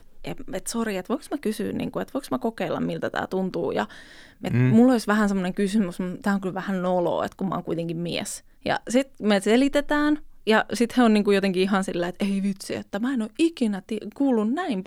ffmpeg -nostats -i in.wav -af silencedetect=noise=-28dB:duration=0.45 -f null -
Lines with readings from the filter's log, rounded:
silence_start: 3.85
silence_end: 4.44 | silence_duration: 0.59